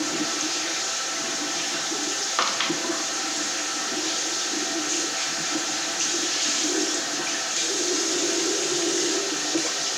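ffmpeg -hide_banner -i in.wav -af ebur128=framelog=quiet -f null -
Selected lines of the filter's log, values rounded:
Integrated loudness:
  I:         -23.4 LUFS
  Threshold: -33.4 LUFS
Loudness range:
  LRA:         1.7 LU
  Threshold: -43.4 LUFS
  LRA low:   -24.2 LUFS
  LRA high:  -22.4 LUFS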